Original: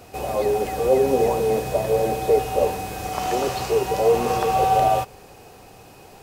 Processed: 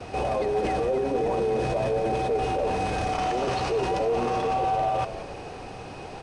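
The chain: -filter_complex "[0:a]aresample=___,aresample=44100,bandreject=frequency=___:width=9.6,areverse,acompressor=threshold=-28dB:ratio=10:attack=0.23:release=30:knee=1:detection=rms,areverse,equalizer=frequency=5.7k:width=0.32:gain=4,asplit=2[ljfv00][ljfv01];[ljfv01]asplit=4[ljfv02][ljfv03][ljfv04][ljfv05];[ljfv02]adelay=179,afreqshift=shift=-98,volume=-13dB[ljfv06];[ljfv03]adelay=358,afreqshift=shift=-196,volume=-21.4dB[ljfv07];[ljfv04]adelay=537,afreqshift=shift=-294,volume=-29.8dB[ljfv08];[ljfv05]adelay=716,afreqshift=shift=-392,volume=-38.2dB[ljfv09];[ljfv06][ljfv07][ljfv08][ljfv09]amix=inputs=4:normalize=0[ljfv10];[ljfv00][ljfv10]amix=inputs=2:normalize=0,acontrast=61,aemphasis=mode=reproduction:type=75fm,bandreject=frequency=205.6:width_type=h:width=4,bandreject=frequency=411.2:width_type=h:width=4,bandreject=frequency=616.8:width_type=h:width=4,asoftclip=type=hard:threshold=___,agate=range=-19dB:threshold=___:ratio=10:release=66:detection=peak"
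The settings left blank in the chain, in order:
22050, 7.2k, -18.5dB, -50dB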